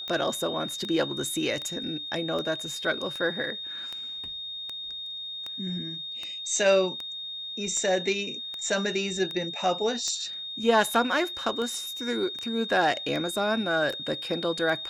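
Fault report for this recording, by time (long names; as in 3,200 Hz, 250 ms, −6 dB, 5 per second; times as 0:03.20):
scratch tick 78 rpm −21 dBFS
whistle 3,700 Hz −34 dBFS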